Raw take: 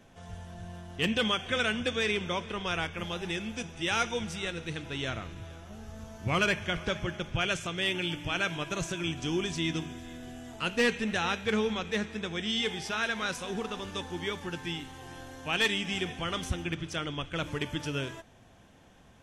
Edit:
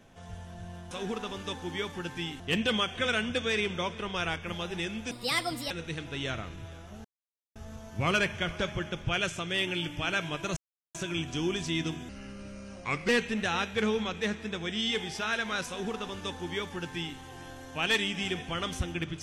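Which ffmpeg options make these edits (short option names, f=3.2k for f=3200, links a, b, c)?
-filter_complex "[0:a]asplit=9[a][b][c][d][e][f][g][h][i];[a]atrim=end=0.912[j];[b]atrim=start=13.388:end=14.882[k];[c]atrim=start=0.908:end=3.624[l];[d]atrim=start=3.62:end=4.49,asetpts=PTS-STARTPTS,asetrate=64386,aresample=44100[m];[e]atrim=start=4.486:end=5.83,asetpts=PTS-STARTPTS,afade=t=out:st=1.34:d=0.004:c=hsin,apad=pad_dur=0.51[n];[f]atrim=start=5.83:end=8.84,asetpts=PTS-STARTPTS,afade=t=in:d=0.004:c=hsin,afade=t=out:st=3.006:d=0.004:c=hsin,apad=pad_dur=0.38[o];[g]atrim=start=8.84:end=9.984,asetpts=PTS-STARTPTS,afade=t=in:d=0.004:c=hsin[p];[h]atrim=start=9.98:end=10.79,asetpts=PTS-STARTPTS,asetrate=35721,aresample=44100[q];[i]atrim=start=10.786[r];[j][k]acrossfade=d=0.004:c1=hsin:c2=hsin[s];[s][l]acrossfade=d=0.004:c1=hsin:c2=hsin[t];[t][m]acrossfade=d=0.004:c1=hsin:c2=hsin[u];[n][o][p]concat=n=3:v=0:a=1[v];[u][v]acrossfade=d=0.004:c1=hsin:c2=hsin[w];[w][q]acrossfade=d=0.004:c1=hsin:c2=hsin[x];[x][r]acrossfade=d=0.004:c1=hsin:c2=hsin"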